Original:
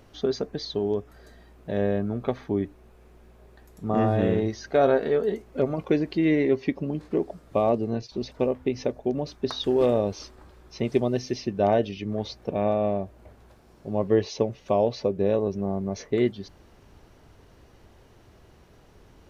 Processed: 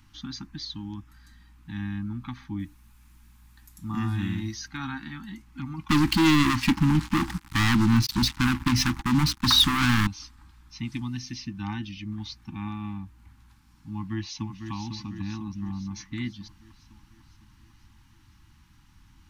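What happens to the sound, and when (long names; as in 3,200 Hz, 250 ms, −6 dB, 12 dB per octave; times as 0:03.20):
0:02.59–0:04.68: high-shelf EQ 5,600 Hz +11.5 dB
0:05.89–0:10.07: leveller curve on the samples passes 5
0:13.90–0:14.71: delay throw 500 ms, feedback 60%, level −7 dB
whole clip: Chebyshev band-stop filter 330–810 Hz, order 5; parametric band 500 Hz −11 dB 1.7 octaves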